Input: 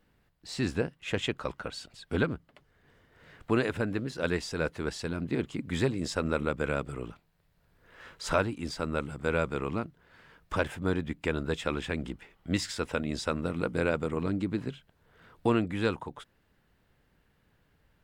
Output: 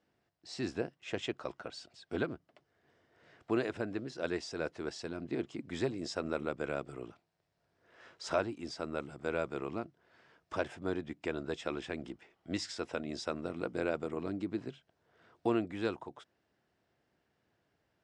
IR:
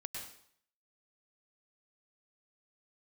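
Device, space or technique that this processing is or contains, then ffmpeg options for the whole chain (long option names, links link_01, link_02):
car door speaker: -af "highpass=110,equalizer=frequency=170:width_type=q:width=4:gain=-4,equalizer=frequency=350:width_type=q:width=4:gain=6,equalizer=frequency=680:width_type=q:width=4:gain=8,equalizer=frequency=5400:width_type=q:width=4:gain=6,lowpass=frequency=8500:width=0.5412,lowpass=frequency=8500:width=1.3066,volume=-8dB"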